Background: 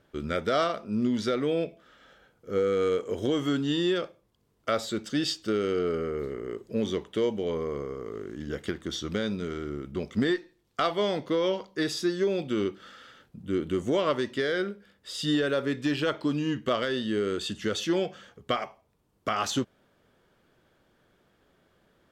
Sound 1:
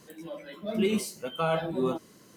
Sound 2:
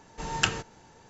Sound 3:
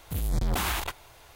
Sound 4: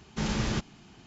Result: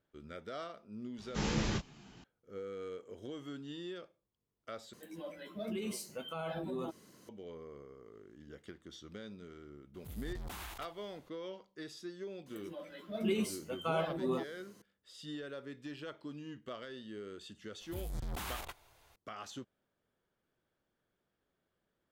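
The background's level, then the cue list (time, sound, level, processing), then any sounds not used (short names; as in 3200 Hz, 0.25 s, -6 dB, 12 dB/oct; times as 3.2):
background -18 dB
1.18 add 4 + detuned doubles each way 30 cents
4.93 replace with 1 -5 dB + limiter -26.5 dBFS
9.94 add 3 -17 dB
12.46 add 1 -6.5 dB
17.81 add 3 -13 dB
not used: 2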